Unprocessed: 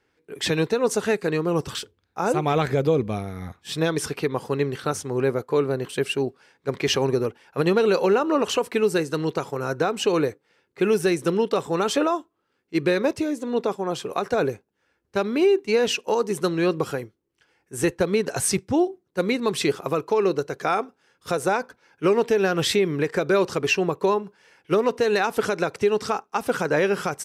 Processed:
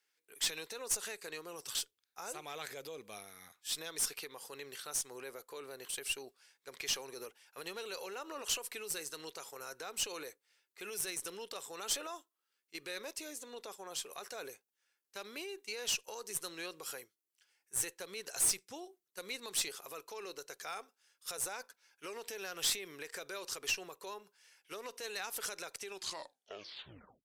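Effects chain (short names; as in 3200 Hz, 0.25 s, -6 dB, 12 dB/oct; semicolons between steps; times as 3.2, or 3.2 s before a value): tape stop at the end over 1.41 s; dynamic EQ 510 Hz, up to +4 dB, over -33 dBFS, Q 1.4; limiter -15.5 dBFS, peak gain reduction 8 dB; differentiator; tube stage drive 25 dB, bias 0.35; gain +1 dB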